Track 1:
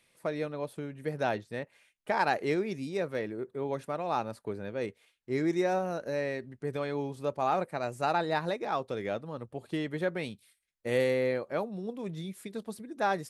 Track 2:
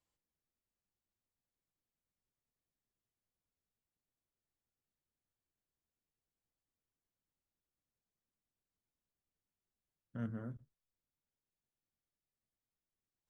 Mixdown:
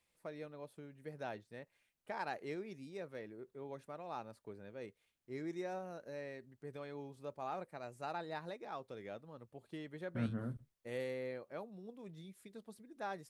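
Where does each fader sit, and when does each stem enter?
-14.0 dB, +3.0 dB; 0.00 s, 0.00 s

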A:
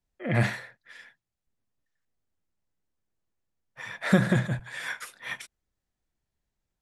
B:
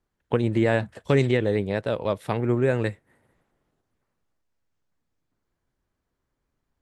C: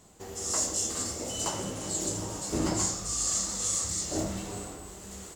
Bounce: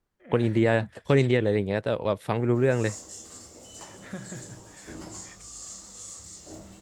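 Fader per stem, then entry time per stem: -17.5 dB, -0.5 dB, -12.5 dB; 0.00 s, 0.00 s, 2.35 s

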